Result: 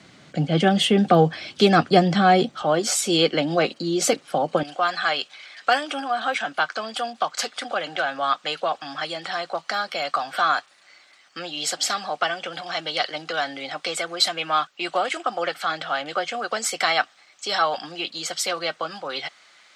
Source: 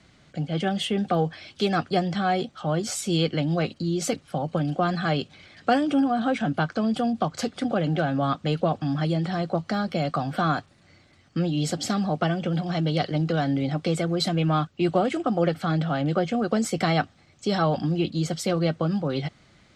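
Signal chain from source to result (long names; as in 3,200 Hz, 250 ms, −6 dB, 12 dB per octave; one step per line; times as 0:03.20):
high-pass filter 150 Hz 12 dB per octave, from 0:02.62 360 Hz, from 0:04.63 970 Hz
level +8 dB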